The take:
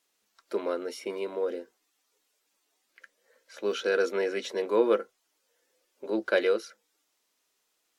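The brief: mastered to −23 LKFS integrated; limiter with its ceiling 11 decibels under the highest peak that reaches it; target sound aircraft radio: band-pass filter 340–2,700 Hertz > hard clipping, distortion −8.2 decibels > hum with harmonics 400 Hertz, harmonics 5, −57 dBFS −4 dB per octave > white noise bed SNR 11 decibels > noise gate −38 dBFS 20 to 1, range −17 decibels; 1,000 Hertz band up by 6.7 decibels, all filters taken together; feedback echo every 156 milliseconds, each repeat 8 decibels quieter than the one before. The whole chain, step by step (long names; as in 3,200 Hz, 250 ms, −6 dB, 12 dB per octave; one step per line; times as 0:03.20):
parametric band 1,000 Hz +8.5 dB
brickwall limiter −20 dBFS
band-pass filter 340–2,700 Hz
repeating echo 156 ms, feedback 40%, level −8 dB
hard clipping −31 dBFS
hum with harmonics 400 Hz, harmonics 5, −57 dBFS −4 dB per octave
white noise bed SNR 11 dB
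noise gate −38 dBFS 20 to 1, range −17 dB
level +13 dB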